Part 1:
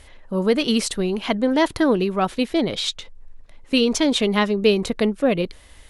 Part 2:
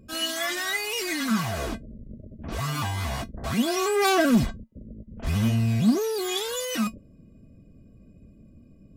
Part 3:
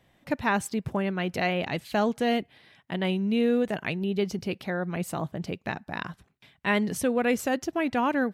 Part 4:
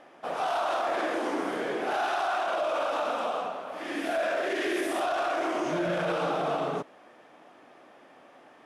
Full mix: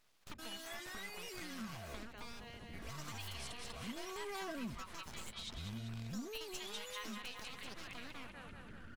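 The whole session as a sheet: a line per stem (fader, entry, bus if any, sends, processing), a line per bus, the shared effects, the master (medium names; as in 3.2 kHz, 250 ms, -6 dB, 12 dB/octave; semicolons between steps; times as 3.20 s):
-2.0 dB, 2.40 s, bus A, no send, echo send -10.5 dB, elliptic high-pass 1 kHz
-10.5 dB, 0.30 s, no bus, no send, no echo send, upward compressor, threshold -30 dBFS
-7.5 dB, 0.00 s, bus A, no send, echo send -16.5 dB, spectral peaks clipped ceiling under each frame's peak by 18 dB; steep high-pass 300 Hz 36 dB/octave
-8.0 dB, 2.50 s, bus A, no send, no echo send, peak limiter -25 dBFS, peak gain reduction 6.5 dB; cascade formant filter a
bus A: 0.0 dB, full-wave rectifier; compression 3:1, threshold -38 dBFS, peak gain reduction 14 dB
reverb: none
echo: feedback delay 194 ms, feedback 55%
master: compression 2:1, threshold -52 dBFS, peak gain reduction 14 dB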